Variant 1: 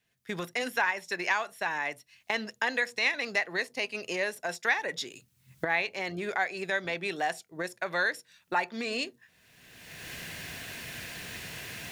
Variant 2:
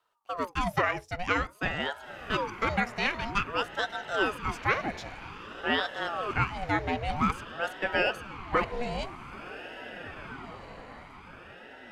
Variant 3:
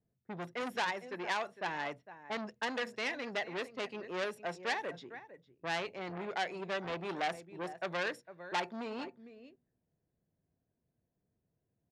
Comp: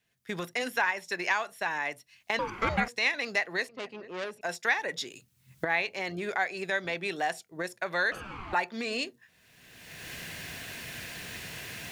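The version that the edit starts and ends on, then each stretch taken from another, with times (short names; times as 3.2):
1
2.39–2.88 from 2
3.69–4.41 from 3
8.12–8.53 from 2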